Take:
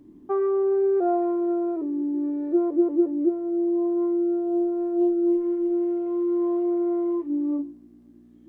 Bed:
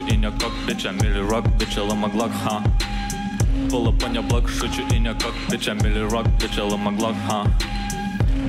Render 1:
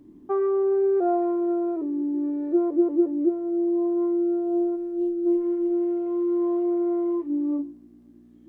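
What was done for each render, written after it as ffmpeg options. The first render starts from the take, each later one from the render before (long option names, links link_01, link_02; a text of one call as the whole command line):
ffmpeg -i in.wav -filter_complex "[0:a]asplit=3[link_01][link_02][link_03];[link_01]afade=type=out:start_time=4.75:duration=0.02[link_04];[link_02]equalizer=frequency=900:width=0.75:gain=-14,afade=type=in:start_time=4.75:duration=0.02,afade=type=out:start_time=5.25:duration=0.02[link_05];[link_03]afade=type=in:start_time=5.25:duration=0.02[link_06];[link_04][link_05][link_06]amix=inputs=3:normalize=0" out.wav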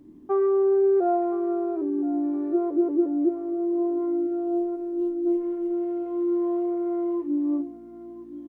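ffmpeg -i in.wav -filter_complex "[0:a]asplit=2[link_01][link_02];[link_02]adelay=13,volume=-13.5dB[link_03];[link_01][link_03]amix=inputs=2:normalize=0,aecho=1:1:1020|2040|3060|4080:0.168|0.0739|0.0325|0.0143" out.wav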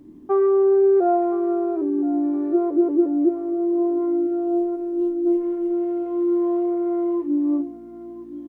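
ffmpeg -i in.wav -af "volume=4dB" out.wav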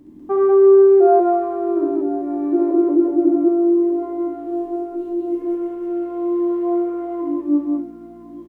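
ffmpeg -i in.wav -filter_complex "[0:a]asplit=2[link_01][link_02];[link_02]adelay=30,volume=-13dB[link_03];[link_01][link_03]amix=inputs=2:normalize=0,aecho=1:1:67.06|195.3:0.708|1" out.wav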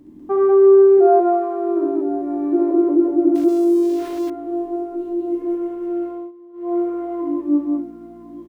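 ffmpeg -i in.wav -filter_complex "[0:a]asettb=1/sr,asplit=3[link_01][link_02][link_03];[link_01]atrim=end=0.974[link_04];[link_02]atrim=start=0.97:end=2.08,asetpts=PTS-STARTPTS,afade=type=in:duration=0.004:curve=qsin,afade=type=out:start_time=1.106:duration=0.004:curve=qsin,bandreject=frequency=60:width_type=h:width=6,bandreject=frequency=120:width_type=h:width=6,bandreject=frequency=180:width_type=h:width=6,bandreject=frequency=240:width_type=h:width=6,bandreject=frequency=300:width_type=h:width=6,bandreject=frequency=360:width_type=h:width=6,bandreject=frequency=420:width_type=h:width=6,bandreject=frequency=480:width_type=h:width=6,bandreject=frequency=540:width_type=h:width=6[link_05];[link_03]atrim=start=2.076[link_06];[link_04][link_05]acrossfade=duration=0.004:curve1=hsin:curve2=qsin[link_07];[link_07][link_06]acrossfade=duration=0.004:curve1=qsin:curve2=hsin,asettb=1/sr,asplit=3[link_08][link_09][link_10];[link_08]atrim=end=3.354[link_11];[link_09]atrim=start=3.35:end=4.3,asetpts=PTS-STARTPTS,afade=type=in:duration=0.004:curve=qsin,afade=type=out:start_time=0.946:duration=0.004:curve=qsin,aeval=exprs='val(0)*gte(abs(val(0)),0.0237)':channel_layout=same[link_12];[link_10]atrim=start=4.296[link_13];[link_11][link_12]acrossfade=duration=0.004:curve1=hsin:curve2=qsin[link_14];[link_14][link_13]acrossfade=duration=0.004:curve1=qsin:curve2=hsin,asplit=3[link_15][link_16][link_17];[link_15]atrim=end=6.32,asetpts=PTS-STARTPTS,afade=type=out:start_time=6.06:duration=0.26:silence=0.0668344[link_18];[link_16]atrim=start=6.32:end=6.53,asetpts=PTS-STARTPTS,volume=-23.5dB[link_19];[link_17]atrim=start=6.53,asetpts=PTS-STARTPTS,afade=type=in:duration=0.26:silence=0.0668344[link_20];[link_18][link_19][link_20]concat=n=3:v=0:a=1" out.wav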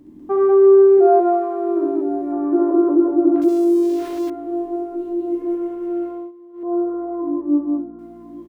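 ffmpeg -i in.wav -filter_complex "[0:a]asettb=1/sr,asplit=3[link_01][link_02][link_03];[link_01]atrim=end=2.324[link_04];[link_02]atrim=start=2.32:end=3.42,asetpts=PTS-STARTPTS,afade=type=in:duration=0.004:curve=qsin,afade=type=out:start_time=1.096:duration=0.004:curve=qsin,lowpass=frequency=1300:width_type=q:width=2.3[link_05];[link_03]atrim=start=3.416[link_06];[link_04][link_05]acrossfade=duration=0.004:curve1=hsin:curve2=qsin[link_07];[link_07][link_06]acrossfade=duration=0.004:curve1=qsin:curve2=hsin,asettb=1/sr,asplit=3[link_08][link_09][link_10];[link_08]atrim=end=6.634[link_11];[link_09]atrim=start=6.63:end=7.99,asetpts=PTS-STARTPTS,afade=type=in:duration=0.004:curve=qsin,afade=type=out:start_time=1.356:duration=0.004:curve=qsin,lowpass=frequency=1400:width=0.5412,lowpass=frequency=1400:width=1.3066[link_12];[link_10]atrim=start=7.986[link_13];[link_11][link_12]acrossfade=duration=0.004:curve1=hsin:curve2=qsin[link_14];[link_14][link_13]acrossfade=duration=0.004:curve1=qsin:curve2=hsin" out.wav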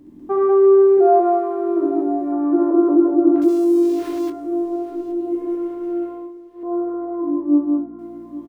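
ffmpeg -i in.wav -filter_complex "[0:a]asplit=2[link_01][link_02];[link_02]adelay=24,volume=-10.5dB[link_03];[link_01][link_03]amix=inputs=2:normalize=0,aecho=1:1:822|1644|2466:0.126|0.0478|0.0182" out.wav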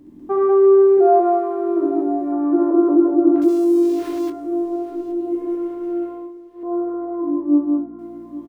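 ffmpeg -i in.wav -af anull out.wav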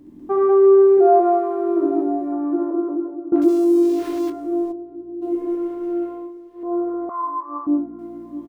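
ffmpeg -i in.wav -filter_complex "[0:a]asplit=3[link_01][link_02][link_03];[link_01]afade=type=out:start_time=4.71:duration=0.02[link_04];[link_02]bandpass=frequency=120:width_type=q:width=0.86,afade=type=in:start_time=4.71:duration=0.02,afade=type=out:start_time=5.21:duration=0.02[link_05];[link_03]afade=type=in:start_time=5.21:duration=0.02[link_06];[link_04][link_05][link_06]amix=inputs=3:normalize=0,asettb=1/sr,asplit=3[link_07][link_08][link_09];[link_07]atrim=end=7.094[link_10];[link_08]atrim=start=7.09:end=7.67,asetpts=PTS-STARTPTS,afade=type=in:duration=0.004:curve=qsin,afade=type=out:start_time=0.576:duration=0.004:curve=qsin,highpass=frequency=1100:width_type=q:width=12[link_11];[link_09]atrim=start=7.666[link_12];[link_10][link_11]acrossfade=duration=0.004:curve1=hsin:curve2=qsin[link_13];[link_13][link_12]acrossfade=duration=0.004:curve1=qsin:curve2=hsin,asplit=2[link_14][link_15];[link_14]atrim=end=3.32,asetpts=PTS-STARTPTS,afade=type=out:start_time=1.94:duration=1.38:silence=0.0891251[link_16];[link_15]atrim=start=3.32,asetpts=PTS-STARTPTS,afade=type=in:duration=0.004:curve=hsin:silence=0.0891251[link_17];[link_16][link_17]concat=n=2:v=0:a=1" out.wav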